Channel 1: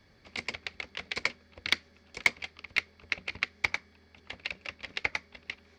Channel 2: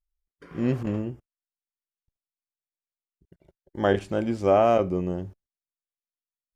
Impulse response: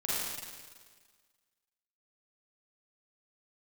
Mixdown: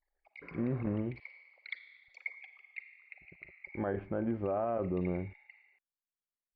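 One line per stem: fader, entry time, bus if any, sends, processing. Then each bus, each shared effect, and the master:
−0.5 dB, 0.00 s, send −17.5 dB, spectral envelope exaggerated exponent 3; four-pole ladder high-pass 750 Hz, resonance 65%; parametric band 3,300 Hz −10.5 dB 0.47 octaves; automatic ducking −11 dB, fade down 1.10 s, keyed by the second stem
−4.5 dB, 0.00 s, no send, low-pass filter 1,800 Hz 24 dB per octave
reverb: on, RT60 1.6 s, pre-delay 37 ms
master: brickwall limiter −24.5 dBFS, peak gain reduction 11 dB

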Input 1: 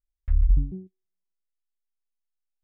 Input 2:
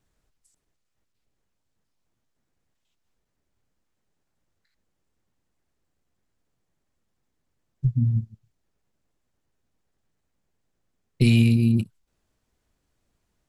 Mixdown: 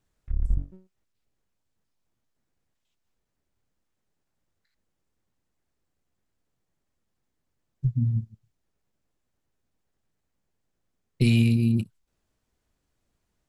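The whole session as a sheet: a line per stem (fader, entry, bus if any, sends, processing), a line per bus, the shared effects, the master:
−0.5 dB, 0.00 s, no send, gain on one half-wave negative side −12 dB; expander for the loud parts 1.5 to 1, over −40 dBFS
−2.5 dB, 0.00 s, no send, no processing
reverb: not used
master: no processing

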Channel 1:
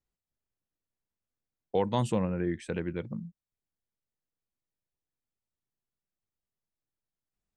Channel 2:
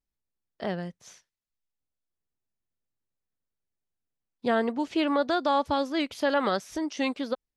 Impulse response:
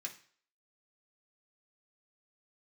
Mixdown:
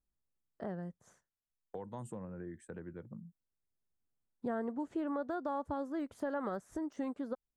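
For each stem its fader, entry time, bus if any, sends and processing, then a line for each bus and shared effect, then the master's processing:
−12.5 dB, 0.00 s, no send, noise gate with hold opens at −36 dBFS; high-shelf EQ 4,600 Hz +8 dB; multiband upward and downward compressor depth 40%
−3.5 dB, 0.00 s, no send, low-pass filter 9,300 Hz 12 dB per octave; de-essing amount 95%; low-shelf EQ 410 Hz +5.5 dB; automatic ducking −7 dB, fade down 1.80 s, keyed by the first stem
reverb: not used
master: flat-topped bell 3,600 Hz −15.5 dB; downward compressor 2 to 1, threshold −42 dBFS, peak gain reduction 11 dB

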